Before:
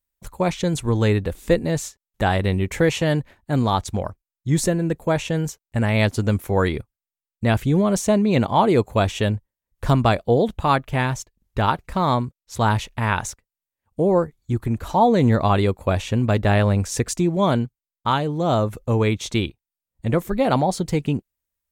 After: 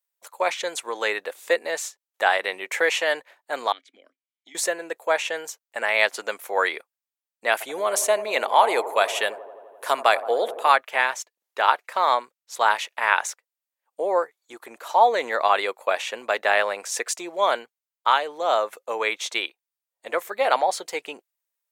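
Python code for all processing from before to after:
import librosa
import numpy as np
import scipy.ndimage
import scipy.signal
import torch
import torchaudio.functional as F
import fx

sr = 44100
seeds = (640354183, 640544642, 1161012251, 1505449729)

y = fx.chain(x, sr, fx.vowel_filter(vowel='i'),
    fx.band_squash(depth_pct=100), at=(3.72, 4.55))
y = fx.chain(y, sr, fx.peak_eq(hz=11000.0, db=11.5, octaves=0.6),
    fx.echo_wet_bandpass(ms=85, feedback_pct=76, hz=480.0, wet_db=-13.0), at=(7.52, 10.72))
y = scipy.signal.sosfilt(scipy.signal.butter(4, 520.0, 'highpass', fs=sr, output='sos'), y)
y = fx.dynamic_eq(y, sr, hz=1900.0, q=1.1, threshold_db=-39.0, ratio=4.0, max_db=6)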